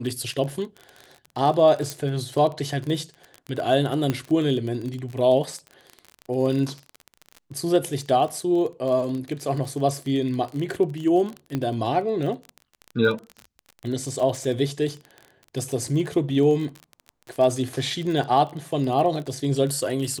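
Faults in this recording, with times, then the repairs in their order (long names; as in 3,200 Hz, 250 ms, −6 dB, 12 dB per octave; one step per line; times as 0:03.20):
surface crackle 30 per second −29 dBFS
0:01.90: click
0:04.10: click −11 dBFS
0:11.55: click −14 dBFS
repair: click removal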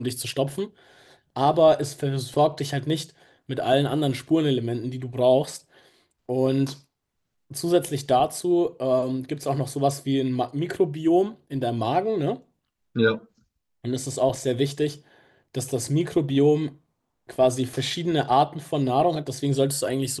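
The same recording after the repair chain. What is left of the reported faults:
none of them is left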